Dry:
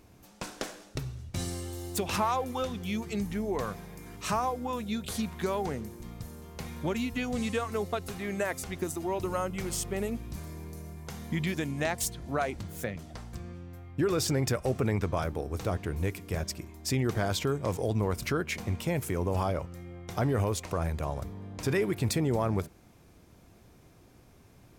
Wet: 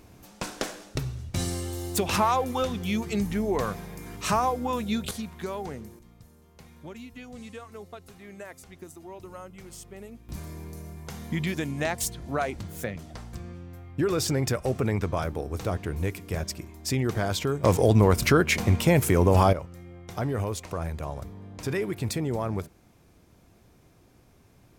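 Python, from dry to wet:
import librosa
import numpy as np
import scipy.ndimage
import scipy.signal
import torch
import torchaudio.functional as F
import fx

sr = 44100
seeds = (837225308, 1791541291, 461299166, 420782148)

y = fx.gain(x, sr, db=fx.steps((0.0, 5.0), (5.11, -3.0), (5.99, -11.0), (10.29, 2.0), (17.64, 10.0), (19.53, -1.0)))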